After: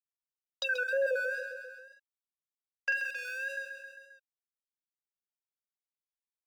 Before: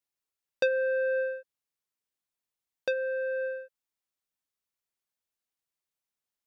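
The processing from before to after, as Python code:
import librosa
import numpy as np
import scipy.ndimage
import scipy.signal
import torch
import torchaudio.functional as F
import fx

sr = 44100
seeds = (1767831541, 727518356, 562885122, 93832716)

y = fx.spec_dropout(x, sr, seeds[0], share_pct=29)
y = fx.wow_flutter(y, sr, seeds[1], rate_hz=2.1, depth_cents=86.0)
y = np.sign(y) * np.maximum(np.abs(y) - 10.0 ** (-52.5 / 20.0), 0.0)
y = fx.filter_lfo_highpass(y, sr, shape='sine', hz=0.7, low_hz=670.0, high_hz=3200.0, q=3.2)
y = fx.doubler(y, sr, ms=43.0, db=-5, at=(1.36, 2.98), fade=0.02)
y = fx.echo_feedback(y, sr, ms=133, feedback_pct=42, wet_db=-13.5)
y = fx.env_flatten(y, sr, amount_pct=50)
y = y * 10.0 ** (-2.5 / 20.0)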